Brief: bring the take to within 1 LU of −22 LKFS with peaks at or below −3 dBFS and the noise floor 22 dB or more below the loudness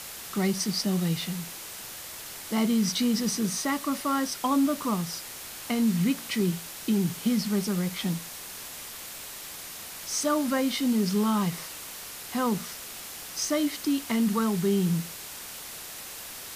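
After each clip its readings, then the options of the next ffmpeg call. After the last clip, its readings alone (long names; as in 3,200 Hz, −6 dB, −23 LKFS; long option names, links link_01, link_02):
background noise floor −41 dBFS; target noise floor −51 dBFS; integrated loudness −28.5 LKFS; sample peak −14.5 dBFS; target loudness −22.0 LKFS
→ -af "afftdn=noise_reduction=10:noise_floor=-41"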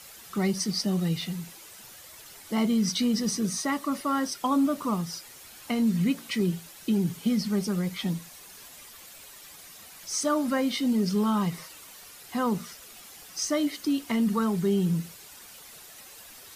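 background noise floor −48 dBFS; target noise floor −50 dBFS
→ -af "afftdn=noise_reduction=6:noise_floor=-48"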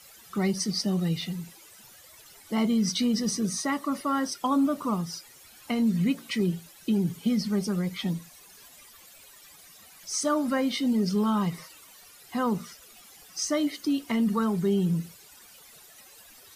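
background noise floor −52 dBFS; integrated loudness −27.5 LKFS; sample peak −15.0 dBFS; target loudness −22.0 LKFS
→ -af "volume=5.5dB"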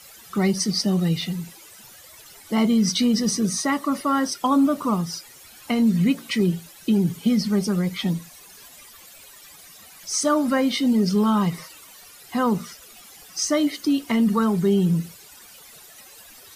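integrated loudness −22.0 LKFS; sample peak −9.5 dBFS; background noise floor −47 dBFS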